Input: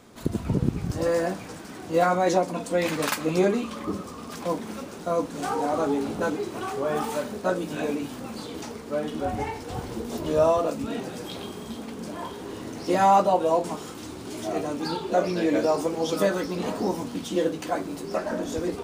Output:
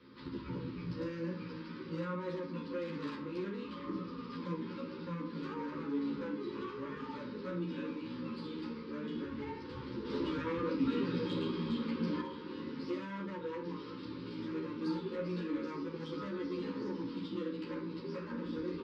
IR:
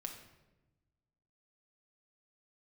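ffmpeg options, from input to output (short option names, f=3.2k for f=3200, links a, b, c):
-filter_complex "[0:a]acrossover=split=350|1100[a][b][c];[a]acompressor=threshold=-32dB:ratio=4[d];[b]acompressor=threshold=-31dB:ratio=4[e];[c]acompressor=threshold=-43dB:ratio=4[f];[d][e][f]amix=inputs=3:normalize=0,aresample=11025,aresample=44100,asoftclip=type=tanh:threshold=-28.5dB,highpass=61[g];[1:a]atrim=start_sample=2205,atrim=end_sample=3528[h];[g][h]afir=irnorm=-1:irlink=0,asettb=1/sr,asplit=3[i][j][k];[i]atrim=end=10.054[l];[j]atrim=start=10.05:end=12.21,asetpts=PTS-STARTPTS,afade=t=in:d=0.004:c=qsin,afade=t=out:st=2.156:d=0.004:c=qsin,acontrast=59[m];[k]atrim=start=12.206[n];[l][m]acrossfade=d=0.004:c1=hsin:c2=qsin[o];[o][n]acrossfade=d=0.004:c1=qsin:c2=hsin,asuperstop=centerf=700:order=8:qfactor=2.1,equalizer=f=270:t=o:w=0.3:g=7,bandreject=f=101.8:t=h:w=4,bandreject=f=203.6:t=h:w=4,bandreject=f=305.4:t=h:w=4,bandreject=f=407.2:t=h:w=4,bandreject=f=509:t=h:w=4,bandreject=f=610.8:t=h:w=4,bandreject=f=712.6:t=h:w=4,bandreject=f=814.4:t=h:w=4,bandreject=f=916.2:t=h:w=4,bandreject=f=1.018k:t=h:w=4,bandreject=f=1.1198k:t=h:w=4,bandreject=f=1.2216k:t=h:w=4,bandreject=f=1.3234k:t=h:w=4,bandreject=f=1.4252k:t=h:w=4,bandreject=f=1.527k:t=h:w=4,bandreject=f=1.6288k:t=h:w=4,bandreject=f=1.7306k:t=h:w=4,bandreject=f=1.8324k:t=h:w=4,bandreject=f=1.9342k:t=h:w=4,bandreject=f=2.036k:t=h:w=4,bandreject=f=2.1378k:t=h:w=4,bandreject=f=2.2396k:t=h:w=4,bandreject=f=2.3414k:t=h:w=4,bandreject=f=2.4432k:t=h:w=4,bandreject=f=2.545k:t=h:w=4,bandreject=f=2.6468k:t=h:w=4,bandreject=f=2.7486k:t=h:w=4,bandreject=f=2.8504k:t=h:w=4,bandreject=f=2.9522k:t=h:w=4,bandreject=f=3.054k:t=h:w=4,bandreject=f=3.1558k:t=h:w=4,bandreject=f=3.2576k:t=h:w=4,bandreject=f=3.3594k:t=h:w=4,bandreject=f=3.4612k:t=h:w=4,bandreject=f=3.563k:t=h:w=4,asplit=2[p][q];[q]adelay=11.7,afreqshift=-0.3[r];[p][r]amix=inputs=2:normalize=1"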